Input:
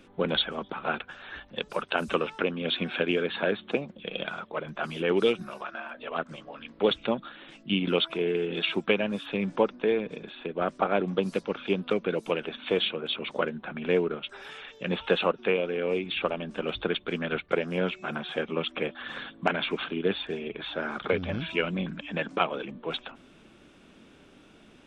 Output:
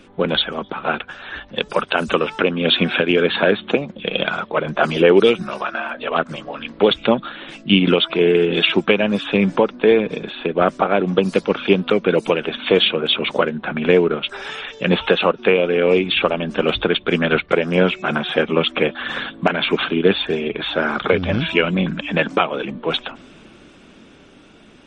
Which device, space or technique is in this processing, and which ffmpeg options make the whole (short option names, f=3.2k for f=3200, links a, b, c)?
low-bitrate web radio: -filter_complex "[0:a]asettb=1/sr,asplit=3[a][b][c];[a]atrim=end=4.644[d];[b]atrim=start=4.64:end=5.2,asetpts=PTS-STARTPTS,afade=t=in:d=0.004:c=qsin,afade=t=out:st=0.556:d=0.004:c=qsin,equalizer=f=500:w=0.99:g=5[e];[c]atrim=start=5.196[f];[d][e]acrossfade=d=0.004:c1=hsin:c2=qsin[g];[g][f]acrossfade=d=0.004:c1=qsin:c2=hsin,dynaudnorm=f=190:g=17:m=5.5dB,alimiter=limit=-10.5dB:level=0:latency=1:release=274,volume=8.5dB" -ar 48000 -c:a libmp3lame -b:a 40k